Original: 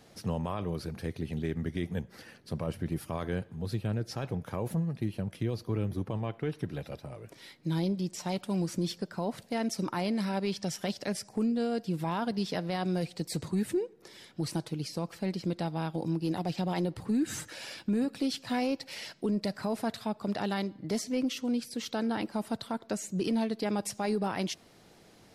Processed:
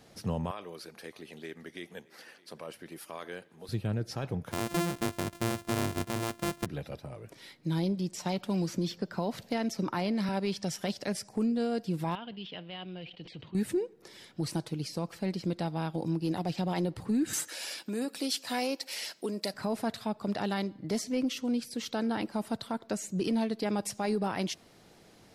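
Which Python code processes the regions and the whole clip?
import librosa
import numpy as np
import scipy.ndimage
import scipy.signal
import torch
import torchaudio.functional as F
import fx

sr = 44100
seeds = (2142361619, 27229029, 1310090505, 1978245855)

y = fx.chain(x, sr, fx.highpass(hz=480.0, slope=12),
    fx.dynamic_eq(hz=760.0, q=0.8, threshold_db=-51.0, ratio=4.0, max_db=-5),
    fx.echo_single(ms=618, db=-23.0), at=(0.51, 3.69))
y = fx.chain(y, sr, fx.sample_sort(block=128),
    fx.peak_eq(hz=10000.0, db=4.5, octaves=0.91), at=(4.51, 6.66))
y = fx.chain(y, sr, fx.peak_eq(hz=9300.0, db=-8.5, octaves=0.57),
    fx.band_squash(depth_pct=70), at=(8.25, 10.29))
y = fx.chain(y, sr, fx.ladder_lowpass(hz=3200.0, resonance_pct=80),
    fx.sustainer(db_per_s=96.0), at=(12.15, 13.55))
y = fx.chain(y, sr, fx.highpass(hz=310.0, slope=12),
    fx.high_shelf(hz=5400.0, db=11.5), at=(17.33, 19.54))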